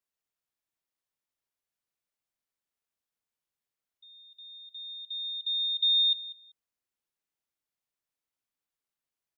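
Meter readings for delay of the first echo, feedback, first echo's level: 193 ms, 16%, −16.5 dB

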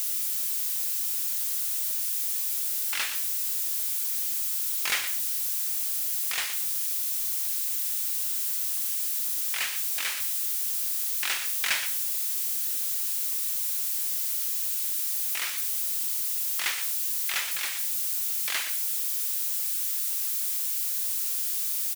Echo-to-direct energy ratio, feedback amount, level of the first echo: −11.5 dB, repeats not evenly spaced, −11.5 dB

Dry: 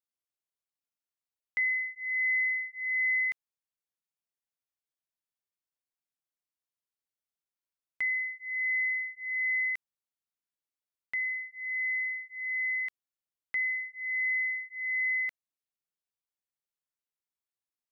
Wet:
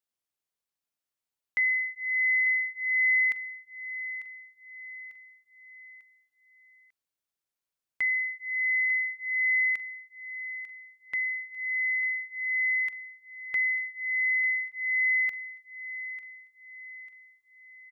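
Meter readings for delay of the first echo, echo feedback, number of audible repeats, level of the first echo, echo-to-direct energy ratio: 896 ms, 45%, 4, −14.0 dB, −13.0 dB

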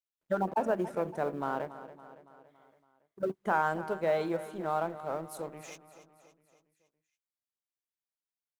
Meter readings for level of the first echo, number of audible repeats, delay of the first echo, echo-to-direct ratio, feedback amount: −14.5 dB, 4, 281 ms, −13.0 dB, 54%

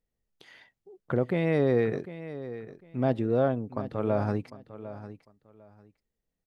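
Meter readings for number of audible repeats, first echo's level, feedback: 2, −14.0 dB, 21%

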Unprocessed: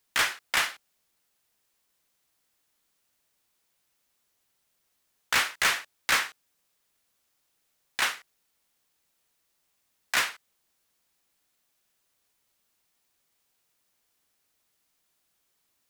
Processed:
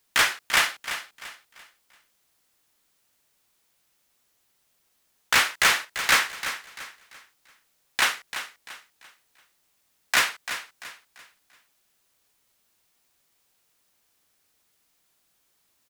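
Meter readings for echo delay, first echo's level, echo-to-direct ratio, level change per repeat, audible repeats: 341 ms, −11.0 dB, −10.5 dB, −9.5 dB, 3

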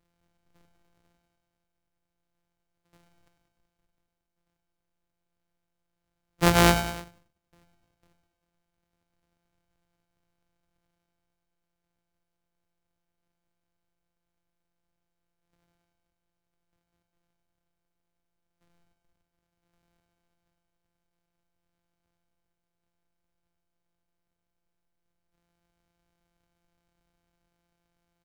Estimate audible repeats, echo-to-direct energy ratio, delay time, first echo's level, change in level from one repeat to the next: 3, −9.0 dB, 100 ms, −10.5 dB, −5.0 dB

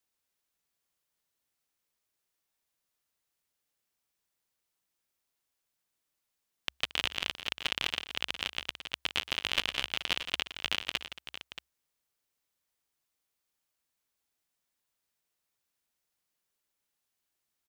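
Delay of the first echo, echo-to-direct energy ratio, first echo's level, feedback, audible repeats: 122 ms, −8.0 dB, −20.0 dB, repeats not evenly spaced, 4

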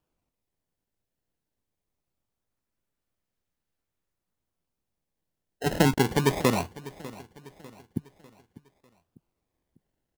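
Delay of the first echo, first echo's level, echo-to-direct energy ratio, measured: 598 ms, −18.5 dB, −17.5 dB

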